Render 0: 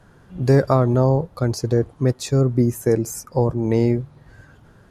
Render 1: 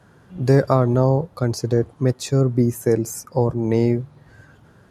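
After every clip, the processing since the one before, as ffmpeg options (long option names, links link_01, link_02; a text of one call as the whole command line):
ffmpeg -i in.wav -af "highpass=73" out.wav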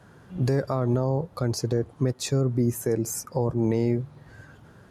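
ffmpeg -i in.wav -af "alimiter=limit=-14dB:level=0:latency=1:release=184" out.wav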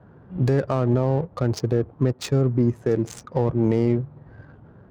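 ffmpeg -i in.wav -af "adynamicsmooth=sensitivity=6:basefreq=970,volume=3.5dB" out.wav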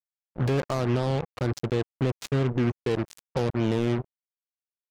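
ffmpeg -i in.wav -af "acrusher=bits=3:mix=0:aa=0.5,volume=-5dB" out.wav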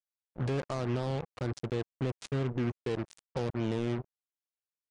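ffmpeg -i in.wav -af "aresample=22050,aresample=44100,volume=-7dB" out.wav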